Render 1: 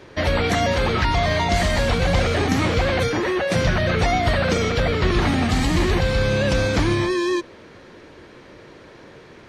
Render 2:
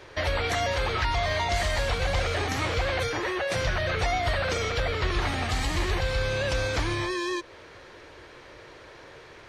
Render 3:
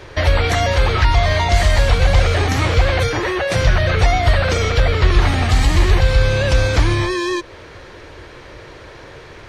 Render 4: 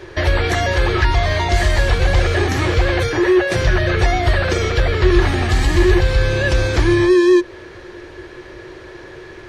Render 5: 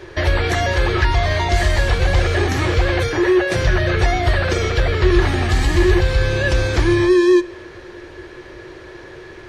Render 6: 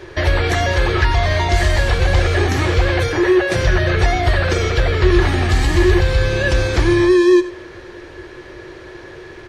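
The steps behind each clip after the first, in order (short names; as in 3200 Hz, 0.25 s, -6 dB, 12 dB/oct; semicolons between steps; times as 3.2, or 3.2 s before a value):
bell 210 Hz -14 dB 1.3 oct; in parallel at +2.5 dB: compressor, threshold -30 dBFS, peak gain reduction 13 dB; on the sum: gain -7.5 dB
low shelf 180 Hz +8.5 dB; gain +8 dB
small resonant body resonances 360/1700 Hz, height 14 dB, ringing for 85 ms; gain -2 dB
reverb RT60 1.4 s, pre-delay 9 ms, DRR 17.5 dB; gain -1 dB
echo 92 ms -14.5 dB; gain +1 dB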